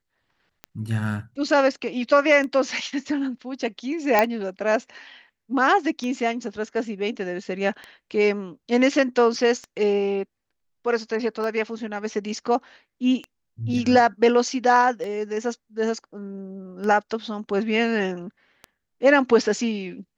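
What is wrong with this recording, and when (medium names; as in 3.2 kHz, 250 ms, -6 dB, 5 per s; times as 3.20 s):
tick 33 1/3 rpm -20 dBFS
4.19 s: pop -5 dBFS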